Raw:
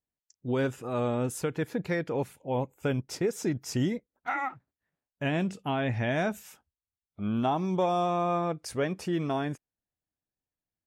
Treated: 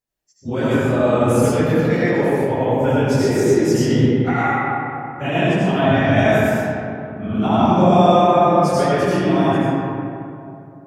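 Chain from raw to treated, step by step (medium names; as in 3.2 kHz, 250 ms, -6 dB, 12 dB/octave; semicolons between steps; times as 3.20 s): phase randomisation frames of 50 ms; algorithmic reverb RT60 2.8 s, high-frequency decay 0.45×, pre-delay 45 ms, DRR -8.5 dB; trim +4.5 dB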